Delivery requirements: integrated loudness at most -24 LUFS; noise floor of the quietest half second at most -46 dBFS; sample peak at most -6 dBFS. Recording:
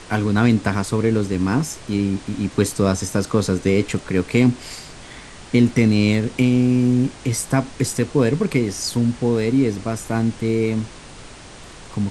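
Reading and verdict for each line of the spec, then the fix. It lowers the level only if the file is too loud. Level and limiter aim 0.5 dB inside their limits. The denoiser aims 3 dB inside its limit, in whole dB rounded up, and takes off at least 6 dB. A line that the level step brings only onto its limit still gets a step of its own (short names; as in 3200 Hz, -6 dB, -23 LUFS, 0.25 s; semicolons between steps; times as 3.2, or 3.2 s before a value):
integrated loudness -20.0 LUFS: fail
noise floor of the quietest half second -40 dBFS: fail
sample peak -3.5 dBFS: fail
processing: denoiser 6 dB, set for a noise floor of -40 dBFS; gain -4.5 dB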